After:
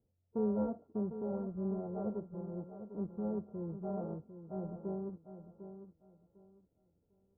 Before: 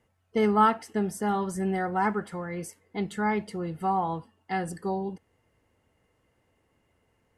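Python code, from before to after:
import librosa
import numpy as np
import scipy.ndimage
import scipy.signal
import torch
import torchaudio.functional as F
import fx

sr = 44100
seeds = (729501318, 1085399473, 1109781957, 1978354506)

y = np.r_[np.sort(x[:len(x) // 32 * 32].reshape(-1, 32), axis=1).ravel(), x[len(x) // 32 * 32:]]
y = scipy.signal.sosfilt(scipy.signal.cheby2(4, 70, 2800.0, 'lowpass', fs=sr, output='sos'), y)
y = fx.echo_feedback(y, sr, ms=751, feedback_pct=23, wet_db=-10.5)
y = F.gain(torch.from_numpy(y), -7.0).numpy()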